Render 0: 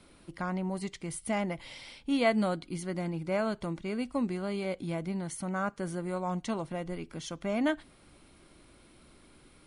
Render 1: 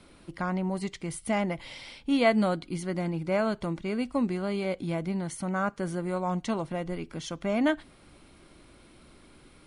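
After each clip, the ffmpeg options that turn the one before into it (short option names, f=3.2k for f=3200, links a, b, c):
-af "highshelf=f=9.4k:g=-6.5,volume=3.5dB"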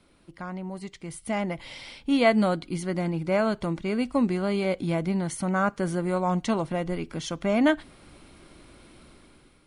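-af "dynaudnorm=f=900:g=3:m=11dB,volume=-6.5dB"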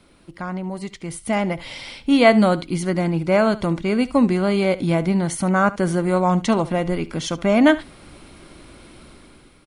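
-af "aecho=1:1:71:0.126,volume=7dB"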